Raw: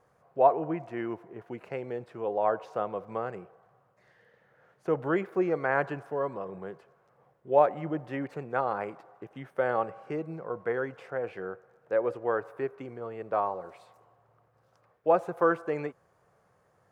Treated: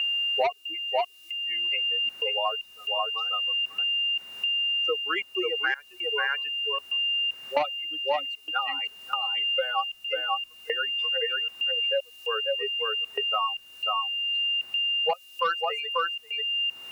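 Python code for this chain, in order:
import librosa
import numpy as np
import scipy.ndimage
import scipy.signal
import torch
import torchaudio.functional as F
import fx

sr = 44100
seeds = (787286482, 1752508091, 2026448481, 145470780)

p1 = fx.bin_expand(x, sr, power=3.0)
p2 = p1 + 10.0 ** (-52.0 / 20.0) * np.sin(2.0 * np.pi * 2800.0 * np.arange(len(p1)) / sr)
p3 = fx.high_shelf(p2, sr, hz=2200.0, db=-5.5)
p4 = p3 + fx.echo_single(p3, sr, ms=540, db=-5.0, dry=0)
p5 = fx.step_gate(p4, sr, bpm=115, pattern='xxxx.xxx..xx', floor_db=-24.0, edge_ms=4.5)
p6 = scipy.signal.sosfilt(scipy.signal.butter(4, 650.0, 'highpass', fs=sr, output='sos'), p5)
p7 = fx.peak_eq(p6, sr, hz=2800.0, db=6.5, octaves=0.63)
p8 = fx.fold_sine(p7, sr, drive_db=8, ceiling_db=-14.5)
p9 = p7 + F.gain(torch.from_numpy(p8), -7.0).numpy()
p10 = fx.quant_dither(p9, sr, seeds[0], bits=12, dither='triangular')
p11 = fx.transient(p10, sr, attack_db=-1, sustain_db=3)
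p12 = fx.band_squash(p11, sr, depth_pct=100)
y = F.gain(torch.from_numpy(p12), 5.5).numpy()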